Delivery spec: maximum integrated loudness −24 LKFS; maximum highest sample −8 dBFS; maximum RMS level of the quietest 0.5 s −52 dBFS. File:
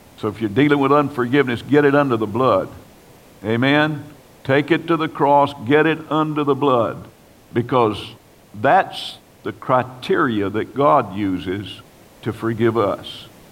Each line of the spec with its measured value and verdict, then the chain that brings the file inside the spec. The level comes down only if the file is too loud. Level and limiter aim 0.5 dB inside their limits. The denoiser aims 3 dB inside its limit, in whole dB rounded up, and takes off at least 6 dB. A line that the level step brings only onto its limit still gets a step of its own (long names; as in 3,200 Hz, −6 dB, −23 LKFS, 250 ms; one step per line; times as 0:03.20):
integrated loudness −18.5 LKFS: out of spec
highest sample −2.5 dBFS: out of spec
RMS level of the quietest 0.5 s −46 dBFS: out of spec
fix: broadband denoise 6 dB, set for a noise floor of −46 dBFS
level −6 dB